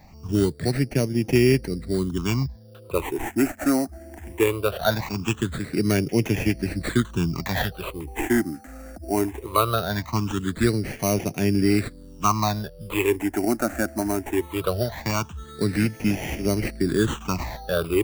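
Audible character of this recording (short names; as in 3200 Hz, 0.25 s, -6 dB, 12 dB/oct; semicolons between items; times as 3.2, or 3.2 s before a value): aliases and images of a low sample rate 5100 Hz, jitter 0%; phasing stages 8, 0.2 Hz, lowest notch 130–1200 Hz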